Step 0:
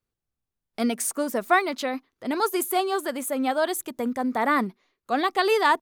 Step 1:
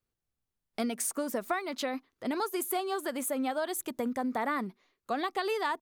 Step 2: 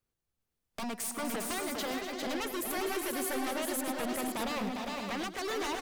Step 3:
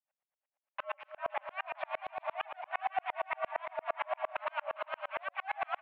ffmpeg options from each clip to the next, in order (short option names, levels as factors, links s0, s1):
-af "acompressor=threshold=0.0447:ratio=6,volume=0.841"
-af "aeval=exprs='0.0282*(abs(mod(val(0)/0.0282+3,4)-2)-1)':c=same,aecho=1:1:105|248|403|438|513|625:0.224|0.282|0.596|0.224|0.447|0.355"
-af "highpass=f=180:t=q:w=0.5412,highpass=f=180:t=q:w=1.307,lowpass=f=2400:t=q:w=0.5176,lowpass=f=2400:t=q:w=0.7071,lowpass=f=2400:t=q:w=1.932,afreqshift=380,aeval=exprs='val(0)*pow(10,-39*if(lt(mod(-8.7*n/s,1),2*abs(-8.7)/1000),1-mod(-8.7*n/s,1)/(2*abs(-8.7)/1000),(mod(-8.7*n/s,1)-2*abs(-8.7)/1000)/(1-2*abs(-8.7)/1000))/20)':c=same,volume=2.11"